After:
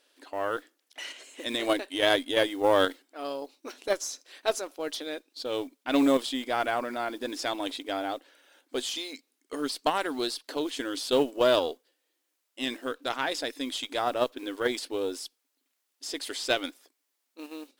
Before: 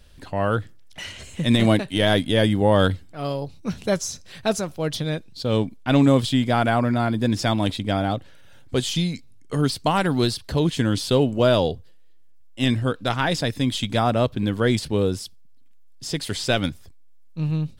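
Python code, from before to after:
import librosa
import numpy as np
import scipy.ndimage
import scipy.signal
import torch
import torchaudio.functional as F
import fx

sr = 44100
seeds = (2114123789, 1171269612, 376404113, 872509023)

p1 = fx.mod_noise(x, sr, seeds[0], snr_db=32)
p2 = fx.brickwall_highpass(p1, sr, low_hz=250.0)
p3 = fx.cheby_harmonics(p2, sr, harmonics=(4,), levels_db=(-22,), full_scale_db=-6.5)
p4 = fx.low_shelf(p3, sr, hz=350.0, db=-3.0)
p5 = fx.level_steps(p4, sr, step_db=20)
p6 = p4 + (p5 * librosa.db_to_amplitude(-1.0))
y = p6 * librosa.db_to_amplitude(-7.5)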